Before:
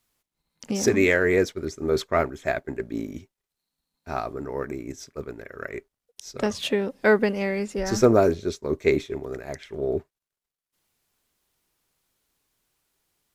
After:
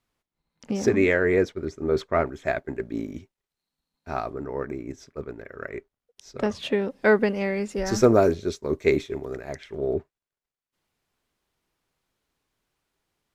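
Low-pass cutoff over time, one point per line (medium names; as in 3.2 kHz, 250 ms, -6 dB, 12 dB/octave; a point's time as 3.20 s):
low-pass 6 dB/octave
2.2 kHz
from 2.27 s 4.6 kHz
from 4.30 s 2.4 kHz
from 6.72 s 4.8 kHz
from 7.66 s 12 kHz
from 9.33 s 5.8 kHz
from 9.94 s 2.9 kHz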